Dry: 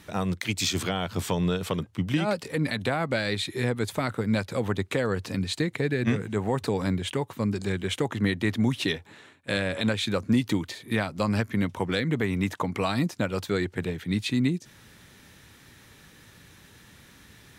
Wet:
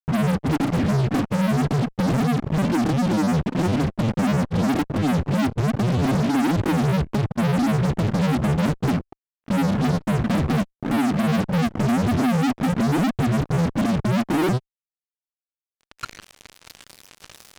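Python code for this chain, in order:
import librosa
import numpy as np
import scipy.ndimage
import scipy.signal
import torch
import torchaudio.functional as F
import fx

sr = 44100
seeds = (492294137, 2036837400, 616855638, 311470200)

y = fx.filter_sweep_lowpass(x, sr, from_hz=200.0, to_hz=4100.0, start_s=14.4, end_s=16.72, q=6.8)
y = fx.fuzz(y, sr, gain_db=42.0, gate_db=-40.0)
y = fx.granulator(y, sr, seeds[0], grain_ms=100.0, per_s=20.0, spray_ms=20.0, spread_st=7)
y = F.gain(torch.from_numpy(y), -4.5).numpy()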